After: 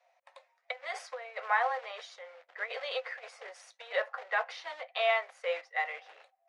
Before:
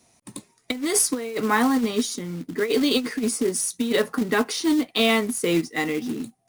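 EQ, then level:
Chebyshev high-pass with heavy ripple 510 Hz, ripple 6 dB
head-to-tape spacing loss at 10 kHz 37 dB
+2.5 dB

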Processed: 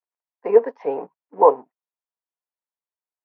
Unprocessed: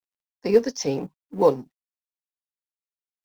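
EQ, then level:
dynamic equaliser 860 Hz, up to +5 dB, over −34 dBFS, Q 1.3
high-frequency loss of the air 81 metres
loudspeaker in its box 410–2,200 Hz, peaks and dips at 440 Hz +6 dB, 670 Hz +6 dB, 970 Hz +9 dB
−1.0 dB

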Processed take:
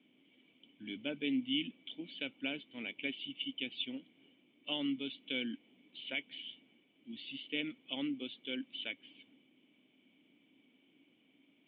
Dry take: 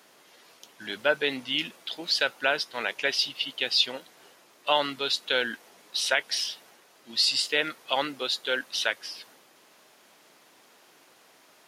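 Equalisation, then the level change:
formant resonators in series i
parametric band 390 Hz −3.5 dB 0.66 octaves
+5.0 dB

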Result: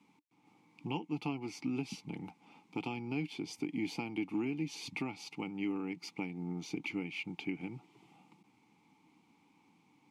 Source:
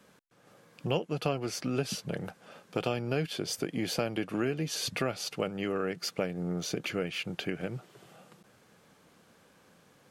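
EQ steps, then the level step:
formant filter u
bass and treble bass +6 dB, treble +11 dB
parametric band 320 Hz −7 dB 0.89 octaves
+8.0 dB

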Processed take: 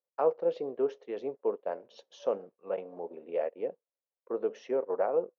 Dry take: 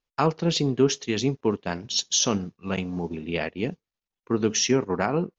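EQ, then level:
four-pole ladder band-pass 580 Hz, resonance 70%
+4.0 dB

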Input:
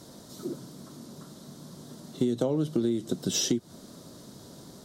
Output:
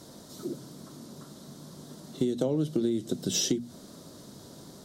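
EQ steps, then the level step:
mains-hum notches 60/120/180/240 Hz
dynamic equaliser 1,100 Hz, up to −5 dB, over −49 dBFS, Q 1.3
0.0 dB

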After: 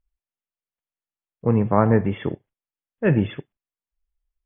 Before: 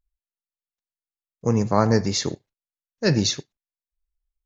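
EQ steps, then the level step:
linear-phase brick-wall low-pass 3,500 Hz
high-frequency loss of the air 230 metres
+2.0 dB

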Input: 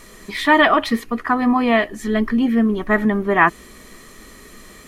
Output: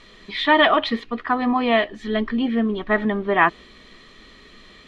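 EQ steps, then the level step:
dynamic equaliser 610 Hz, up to +5 dB, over −27 dBFS, Q 0.81
low-pass with resonance 3,600 Hz, resonance Q 2.9
−6.0 dB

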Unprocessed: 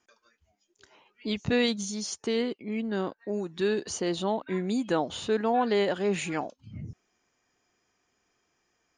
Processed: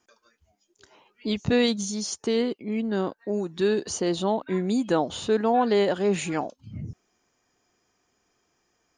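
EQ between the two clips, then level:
parametric band 2,200 Hz −4 dB 1.4 octaves
+4.0 dB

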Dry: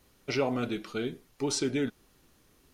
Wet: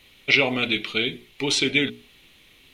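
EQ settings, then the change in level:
flat-topped bell 2,800 Hz +15.5 dB 1.2 octaves
mains-hum notches 60/120/180/240/300/360/420 Hz
+4.5 dB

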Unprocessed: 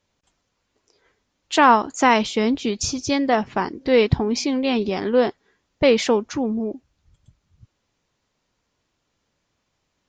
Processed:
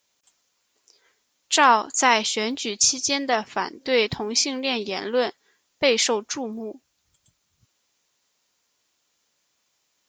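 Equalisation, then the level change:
RIAA equalisation recording
−2.0 dB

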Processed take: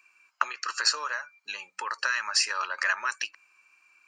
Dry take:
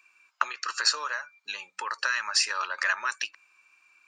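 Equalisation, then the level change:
notch filter 3,600 Hz, Q 6.1
0.0 dB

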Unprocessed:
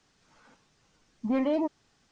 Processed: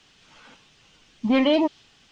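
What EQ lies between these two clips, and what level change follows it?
dynamic equaliser 4,100 Hz, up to +5 dB, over −60 dBFS, Q 1.3
parametric band 3,000 Hz +11.5 dB 0.88 octaves
+7.0 dB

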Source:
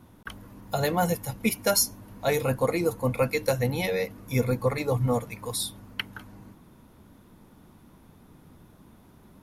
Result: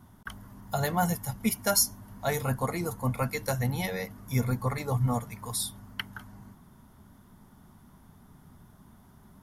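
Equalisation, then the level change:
thirty-one-band graphic EQ 315 Hz −10 dB, 500 Hz −12 dB, 2,500 Hz −10 dB, 4,000 Hz −5 dB
0.0 dB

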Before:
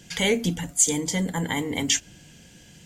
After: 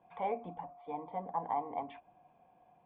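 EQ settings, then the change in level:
formant resonators in series a
low-shelf EQ 150 Hz −11 dB
+8.5 dB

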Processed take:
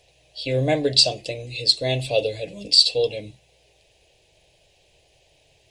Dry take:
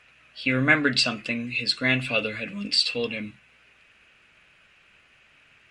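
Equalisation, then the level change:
flat-topped bell 1,700 Hz −13.5 dB
phaser with its sweep stopped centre 560 Hz, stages 4
+8.5 dB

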